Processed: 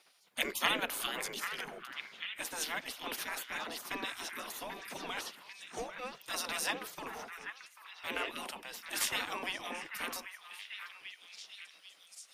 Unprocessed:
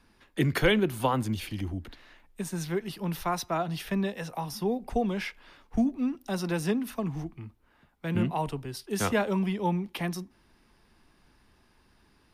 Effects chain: spectral gate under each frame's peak -20 dB weak; resonant low shelf 140 Hz -9 dB, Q 1.5; repeats whose band climbs or falls 790 ms, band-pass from 1.6 kHz, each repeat 0.7 oct, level -5.5 dB; trim +5.5 dB

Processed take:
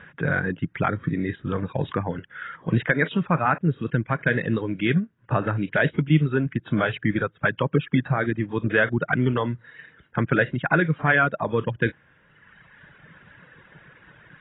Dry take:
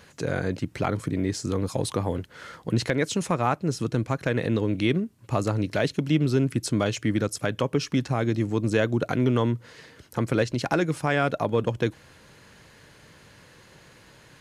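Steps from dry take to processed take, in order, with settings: fifteen-band graphic EQ 160 Hz +8 dB, 1.6 kHz +12 dB, 4 kHz -4 dB; reverb removal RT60 1.7 s; AAC 16 kbps 16 kHz

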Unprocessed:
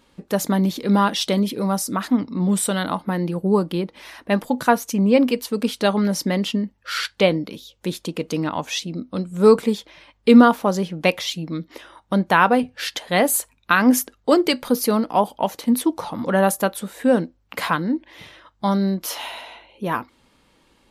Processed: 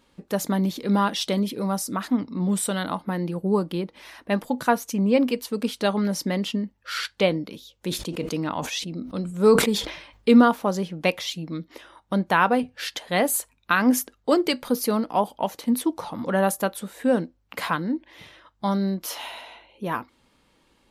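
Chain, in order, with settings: 7.87–10.34 s: decay stretcher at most 75 dB/s; trim -4 dB

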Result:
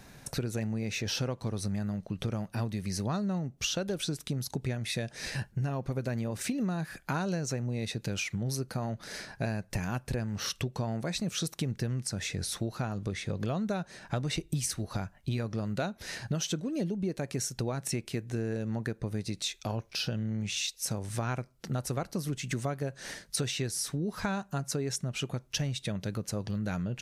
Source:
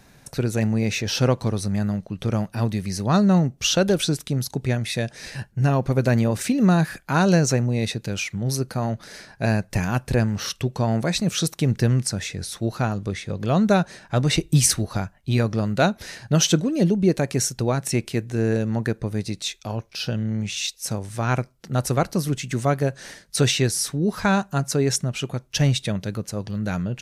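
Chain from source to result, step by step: compression 6:1, threshold -30 dBFS, peak gain reduction 16.5 dB

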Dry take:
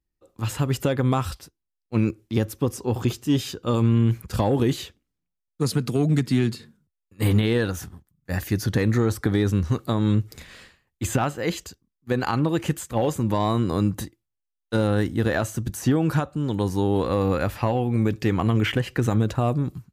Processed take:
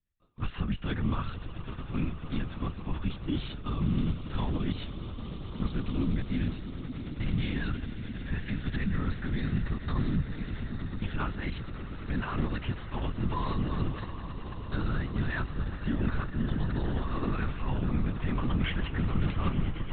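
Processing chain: high-order bell 520 Hz -14.5 dB 1.3 oct; peak limiter -18 dBFS, peak gain reduction 7.5 dB; echo with a slow build-up 109 ms, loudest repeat 8, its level -16.5 dB; LPC vocoder at 8 kHz whisper; trim -4 dB

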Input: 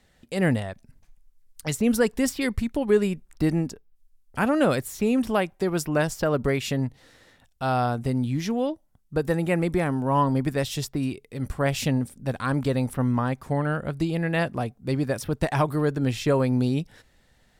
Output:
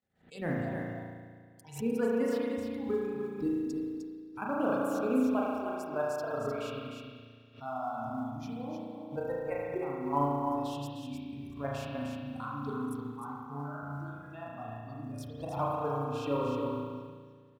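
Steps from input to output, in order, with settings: level held to a coarse grid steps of 21 dB; high-pass 99 Hz 12 dB/octave; hum notches 60/120/180 Hz; peak limiter -25.5 dBFS, peak gain reduction 14.5 dB; spectral noise reduction 19 dB; spring tank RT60 2 s, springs 35 ms, chirp 55 ms, DRR -4 dB; dynamic bell 960 Hz, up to +6 dB, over -47 dBFS, Q 0.91; short-mantissa float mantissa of 4-bit; treble shelf 2.5 kHz -10.5 dB; delay 305 ms -6 dB; swell ahead of each attack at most 150 dB/s

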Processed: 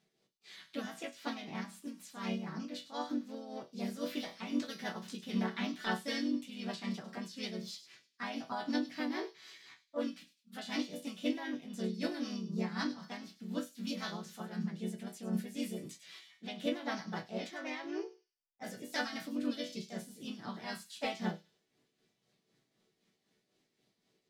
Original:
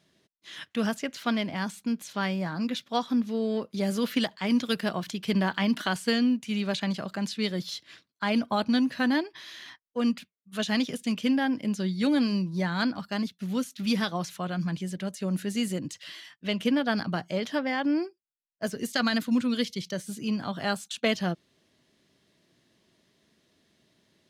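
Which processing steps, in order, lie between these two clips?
treble shelf 10 kHz -3 dB; chord resonator B2 sus4, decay 0.24 s; harmony voices +3 st 0 dB, +5 st -13 dB; tremolo 3.9 Hz, depth 52%; on a send: feedback echo behind a high-pass 101 ms, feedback 32%, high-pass 4 kHz, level -11 dB; on the sum: trim +1.5 dB

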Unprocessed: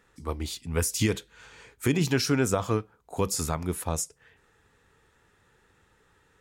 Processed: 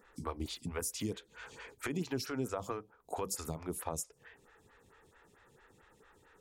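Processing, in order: compression 5:1, threshold -35 dBFS, peak gain reduction 14 dB; lamp-driven phase shifter 4.5 Hz; trim +3.5 dB

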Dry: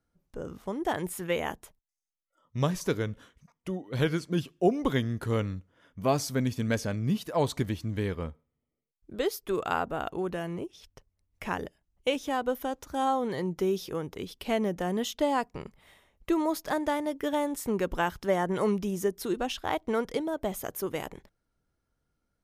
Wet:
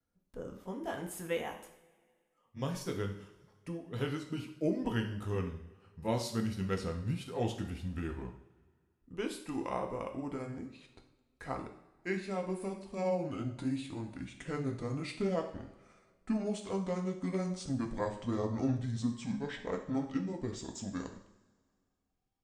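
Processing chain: pitch bend over the whole clip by -10.5 st starting unshifted; vibrato 0.81 Hz 42 cents; two-slope reverb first 0.59 s, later 2 s, from -18 dB, DRR 3 dB; trim -7 dB

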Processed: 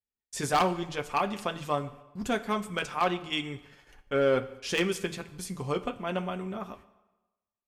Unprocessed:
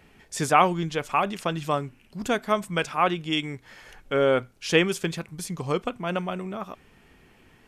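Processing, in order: gate -46 dBFS, range -44 dB; bass shelf 94 Hz +6 dB; in parallel at -3 dB: overload inside the chain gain 17 dB; on the sum: comb of notches 160 Hz; wavefolder -9 dBFS; on a send at -13 dB: reverberation RT60 1.1 s, pre-delay 13 ms; on the sum: trim -7.5 dB

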